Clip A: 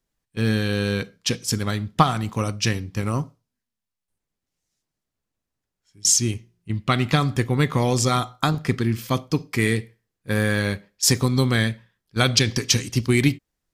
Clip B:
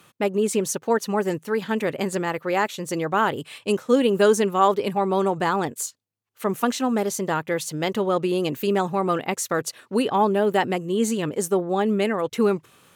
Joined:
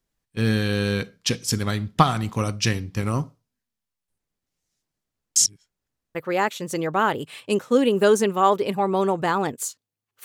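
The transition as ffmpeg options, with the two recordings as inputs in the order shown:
-filter_complex "[0:a]apad=whole_dur=10.24,atrim=end=10.24,asplit=2[a][b];[a]atrim=end=5.362[c];[b]atrim=start=5.358:end=6.152,asetpts=PTS-STARTPTS,areverse[d];[1:a]atrim=start=2.328:end=6.42[e];[c][d]acrossfade=d=0.004:c1=hsin:c2=hsin[f];[f][e]acrossfade=d=0.004:c1=hsin:c2=hsin"

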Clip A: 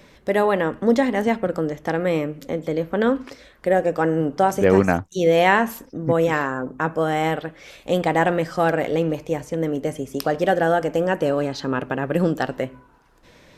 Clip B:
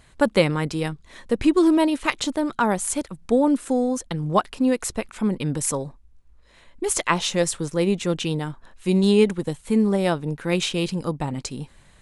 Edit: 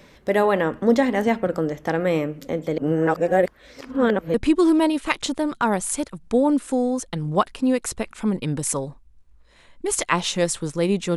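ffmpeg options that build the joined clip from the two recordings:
-filter_complex "[0:a]apad=whole_dur=11.16,atrim=end=11.16,asplit=2[a][b];[a]atrim=end=2.782[c];[b]atrim=start=2.778:end=4.342,asetpts=PTS-STARTPTS,areverse[d];[1:a]atrim=start=1.318:end=8.14[e];[c][d]acrossfade=d=0.004:c1=hsin:c2=hsin[f];[f][e]acrossfade=d=0.004:c1=hsin:c2=hsin"

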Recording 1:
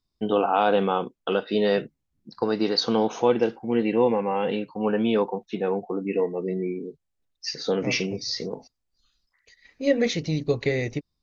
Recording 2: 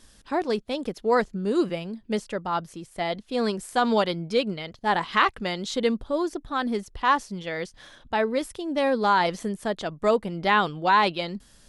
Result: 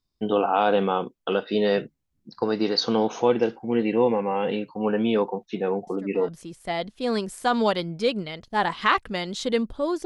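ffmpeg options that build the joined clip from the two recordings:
-filter_complex "[1:a]asplit=2[a][b];[0:a]apad=whole_dur=10.05,atrim=end=10.05,atrim=end=6.282[c];[b]atrim=start=2.588:end=6.36[d];[a]atrim=start=2.18:end=2.59,asetpts=PTS-STARTPTS,volume=-17dB,afade=t=in:d=0.004:c=hsin,afade=t=out:st=0.406:d=0.004:c=hsin,adelay=5870[e];[c][d]acrossfade=d=0.004:c1=hsin:c2=hsin[f];[f][e]amix=inputs=2:normalize=0"

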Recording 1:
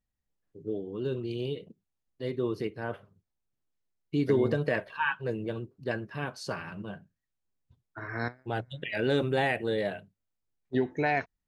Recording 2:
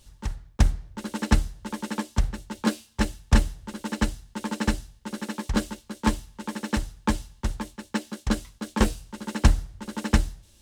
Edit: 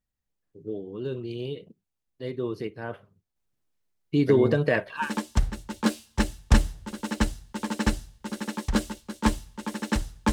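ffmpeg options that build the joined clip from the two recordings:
-filter_complex "[0:a]asettb=1/sr,asplit=3[a][b][c];[a]atrim=end=3.364[d];[b]atrim=start=3.36:end=5.11,asetpts=PTS-STARTPTS,afade=t=in:d=0.004:c=qsin,afade=t=out:st=1.746:d=0.004:c=qsin,acontrast=34[e];[c]atrim=start=5.106[f];[d][e]acrossfade=d=0.004:c1=hsin:c2=qsin[g];[g][f]acrossfade=d=0.004:c1=qsin:c2=hsin,apad=whole_dur=10.32,atrim=end=10.32,atrim=end=5.11,asetpts=PTS-STARTPTS[h];[1:a]atrim=start=1.76:end=7.13,asetpts=PTS-STARTPTS[i];[h][i]acrossfade=d=0.16:c1=tri:c2=tri"

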